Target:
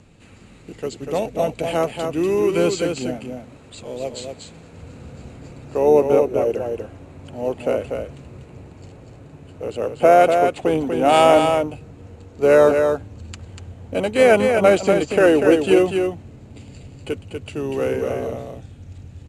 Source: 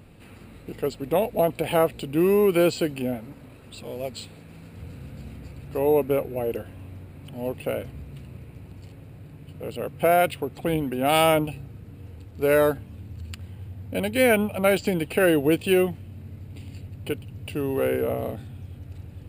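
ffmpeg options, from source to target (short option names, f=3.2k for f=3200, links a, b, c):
-filter_complex "[0:a]bandreject=f=4.9k:w=21,asplit=3[a][b][c];[b]asetrate=22050,aresample=44100,atempo=2,volume=-17dB[d];[c]asetrate=37084,aresample=44100,atempo=1.18921,volume=-15dB[e];[a][d][e]amix=inputs=3:normalize=0,lowpass=f=6.7k:t=q:w=3.8,acrossover=split=320|1300|3900[f][g][h][i];[g]dynaudnorm=f=870:g=9:m=12dB[j];[f][j][h][i]amix=inputs=4:normalize=0,aecho=1:1:242:0.531,volume=-1dB"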